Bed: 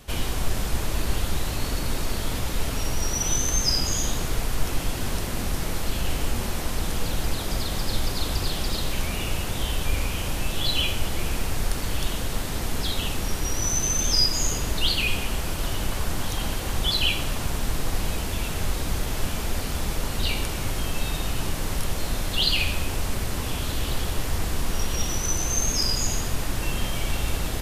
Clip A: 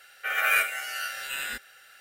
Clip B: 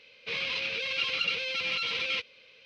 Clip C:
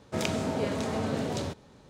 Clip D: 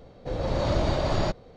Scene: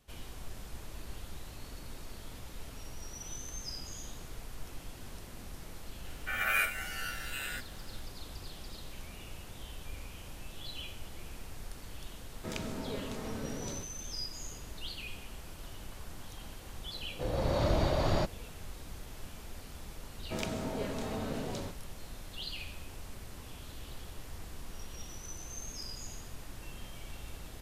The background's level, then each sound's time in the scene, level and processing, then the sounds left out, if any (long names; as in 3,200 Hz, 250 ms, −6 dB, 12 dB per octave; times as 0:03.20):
bed −19 dB
0:06.03: mix in A −6.5 dB
0:12.31: mix in C −9 dB + parametric band 700 Hz −6 dB 0.37 octaves
0:16.94: mix in D −4 dB
0:20.18: mix in C −7 dB
not used: B